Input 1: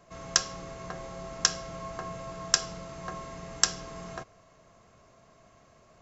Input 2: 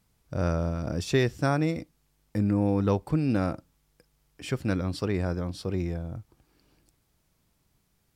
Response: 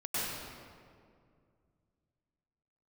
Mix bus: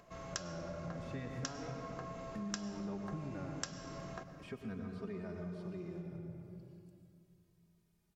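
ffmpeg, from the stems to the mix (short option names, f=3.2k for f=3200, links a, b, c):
-filter_complex "[0:a]highshelf=f=6.4k:g=-9.5,acompressor=mode=upward:threshold=-57dB:ratio=2.5,volume=-4dB,asplit=2[a][b];[b]volume=-19.5dB[c];[1:a]acrossover=split=2900[d][e];[e]acompressor=threshold=-55dB:ratio=4:attack=1:release=60[f];[d][f]amix=inputs=2:normalize=0,aecho=1:1:4.9:0.34,asplit=2[g][h];[h]adelay=2.9,afreqshift=-0.36[i];[g][i]amix=inputs=2:normalize=1,volume=-10.5dB,asplit=2[j][k];[k]volume=-7.5dB[l];[2:a]atrim=start_sample=2205[m];[c][l]amix=inputs=2:normalize=0[n];[n][m]afir=irnorm=-1:irlink=0[o];[a][j][o]amix=inputs=3:normalize=0,acompressor=threshold=-43dB:ratio=2.5"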